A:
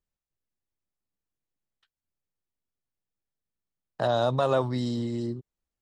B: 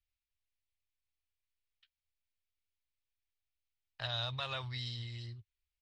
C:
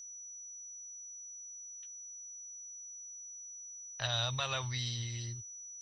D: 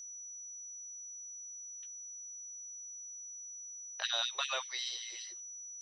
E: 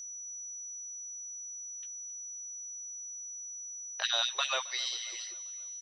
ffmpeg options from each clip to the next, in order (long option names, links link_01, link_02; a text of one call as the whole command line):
ffmpeg -i in.wav -af "firequalizer=gain_entry='entry(100,0);entry(170,-27);entry(300,-28);entry(800,-17);entry(2300,5);entry(4700,0);entry(7100,-13)':delay=0.05:min_phase=1,volume=-1dB" out.wav
ffmpeg -i in.wav -af "aeval=exprs='val(0)+0.00355*sin(2*PI*5900*n/s)':channel_layout=same,volume=3.5dB" out.wav
ffmpeg -i in.wav -af "afftfilt=real='re*gte(b*sr/1024,330*pow(1800/330,0.5+0.5*sin(2*PI*5.2*pts/sr)))':imag='im*gte(b*sr/1024,330*pow(1800/330,0.5+0.5*sin(2*PI*5.2*pts/sr)))':win_size=1024:overlap=0.75,volume=1dB" out.wav
ffmpeg -i in.wav -af "aecho=1:1:268|536|804|1072:0.0841|0.0471|0.0264|0.0148,volume=4dB" out.wav